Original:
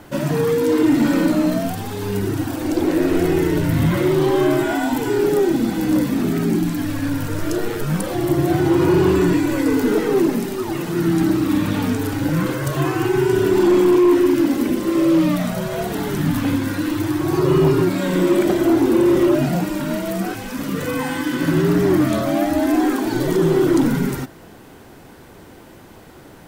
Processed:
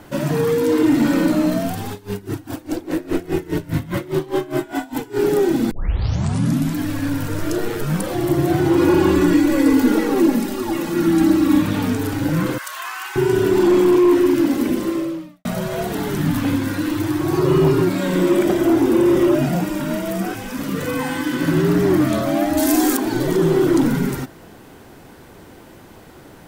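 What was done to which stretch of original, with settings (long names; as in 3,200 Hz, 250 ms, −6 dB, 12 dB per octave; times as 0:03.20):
0:01.92–0:05.19: tremolo with a sine in dB 4.9 Hz, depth 22 dB
0:05.71: tape start 1.04 s
0:08.77–0:11.62: comb filter 3.6 ms
0:12.58–0:13.16: high-pass filter 1,000 Hz 24 dB per octave
0:14.83–0:15.45: fade out quadratic
0:18.30–0:20.56: notch filter 4,200 Hz
0:22.57–0:22.97: bass and treble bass +1 dB, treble +15 dB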